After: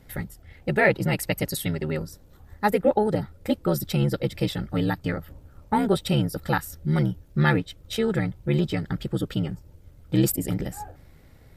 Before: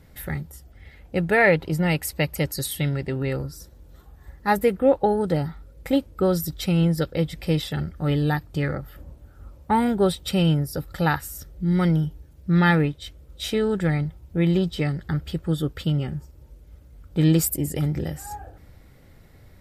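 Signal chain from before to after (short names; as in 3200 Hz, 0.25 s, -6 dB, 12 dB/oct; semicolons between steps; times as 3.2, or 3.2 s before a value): granular stretch 0.59×, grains 28 ms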